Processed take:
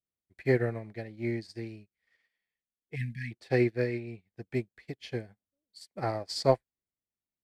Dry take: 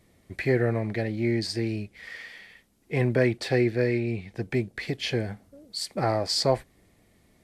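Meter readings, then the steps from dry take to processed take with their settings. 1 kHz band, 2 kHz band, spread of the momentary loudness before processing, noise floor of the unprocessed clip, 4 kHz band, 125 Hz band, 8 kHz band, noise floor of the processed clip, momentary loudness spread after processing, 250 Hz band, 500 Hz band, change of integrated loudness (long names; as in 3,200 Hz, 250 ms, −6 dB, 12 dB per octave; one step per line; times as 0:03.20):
−4.5 dB, −7.0 dB, 16 LU, −63 dBFS, −11.5 dB, −6.5 dB, below −10 dB, below −85 dBFS, 16 LU, −6.5 dB, −4.5 dB, −5.0 dB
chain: time-frequency box erased 0:02.96–0:03.31, 250–1,600 Hz
expander for the loud parts 2.5 to 1, over −46 dBFS
level +1 dB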